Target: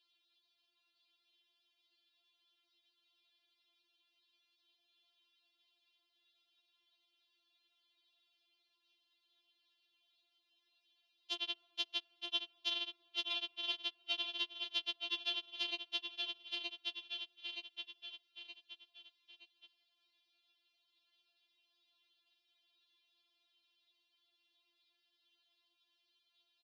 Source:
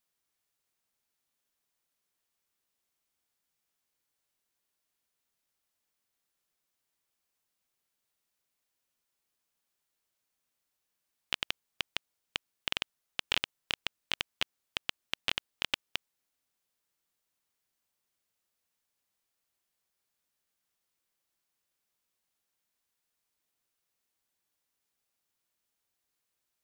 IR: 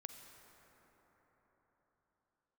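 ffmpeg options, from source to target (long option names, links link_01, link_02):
-filter_complex "[0:a]aeval=exprs='clip(val(0),-1,0.0422)':channel_layout=same,asplit=2[link_01][link_02];[link_02]aecho=0:1:922|1844|2766|3688:0.376|0.143|0.0543|0.0206[link_03];[link_01][link_03]amix=inputs=2:normalize=0,aexciter=amount=10.7:drive=4.3:freq=2800,highpass=frequency=150:width_type=q:width=0.5412,highpass=frequency=150:width_type=q:width=1.307,lowpass=frequency=3500:width_type=q:width=0.5176,lowpass=frequency=3500:width_type=q:width=0.7071,lowpass=frequency=3500:width_type=q:width=1.932,afreqshift=78,acrossover=split=1200|2700[link_04][link_05][link_06];[link_04]acompressor=threshold=-50dB:ratio=4[link_07];[link_05]acompressor=threshold=-48dB:ratio=4[link_08];[link_06]acompressor=threshold=-38dB:ratio=4[link_09];[link_07][link_08][link_09]amix=inputs=3:normalize=0,asplit=2[link_10][link_11];[1:a]atrim=start_sample=2205,afade=type=out:start_time=0.45:duration=0.01,atrim=end_sample=20286,highshelf=frequency=2300:gain=-11[link_12];[link_11][link_12]afir=irnorm=-1:irlink=0,volume=-9dB[link_13];[link_10][link_13]amix=inputs=2:normalize=0,afftfilt=real='re*4*eq(mod(b,16),0)':imag='im*4*eq(mod(b,16),0)':win_size=2048:overlap=0.75,volume=2.5dB"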